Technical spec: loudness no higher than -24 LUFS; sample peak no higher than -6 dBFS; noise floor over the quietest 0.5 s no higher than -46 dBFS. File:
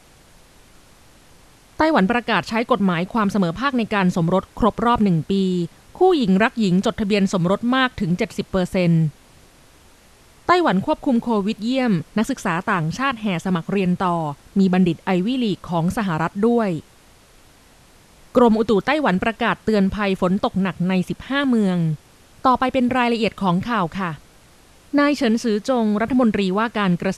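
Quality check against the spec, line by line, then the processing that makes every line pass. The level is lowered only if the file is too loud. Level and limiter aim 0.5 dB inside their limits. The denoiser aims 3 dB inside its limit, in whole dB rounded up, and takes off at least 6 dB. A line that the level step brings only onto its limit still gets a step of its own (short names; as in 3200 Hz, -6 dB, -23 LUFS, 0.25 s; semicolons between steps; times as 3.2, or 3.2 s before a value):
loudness -20.0 LUFS: fail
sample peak -3.0 dBFS: fail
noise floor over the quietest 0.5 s -50 dBFS: OK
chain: gain -4.5 dB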